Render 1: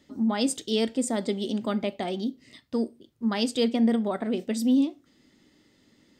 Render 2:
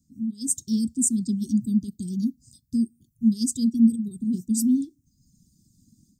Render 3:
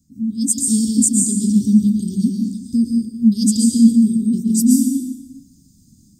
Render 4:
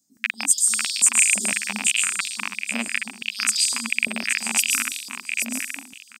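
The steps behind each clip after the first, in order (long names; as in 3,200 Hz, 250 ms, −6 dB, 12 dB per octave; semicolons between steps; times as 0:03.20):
inverse Chebyshev band-stop filter 560–2,500 Hz, stop band 60 dB; reverb reduction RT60 1 s; automatic gain control gain up to 12 dB
dense smooth reverb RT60 1 s, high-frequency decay 0.95×, pre-delay 105 ms, DRR 0 dB; level +6.5 dB
loose part that buzzes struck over −20 dBFS, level −12 dBFS; on a send: repeating echo 825 ms, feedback 23%, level −6.5 dB; on the sum: high-pass on a step sequencer 5.9 Hz 620–3,900 Hz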